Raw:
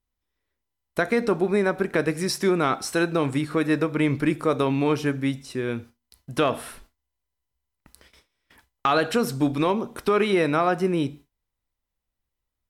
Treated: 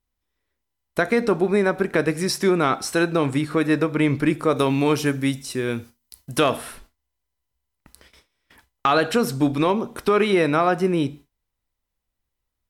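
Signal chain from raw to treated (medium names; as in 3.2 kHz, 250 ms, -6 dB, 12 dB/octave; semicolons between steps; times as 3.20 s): 4.56–6.57 s: treble shelf 5.2 kHz +11 dB; trim +2.5 dB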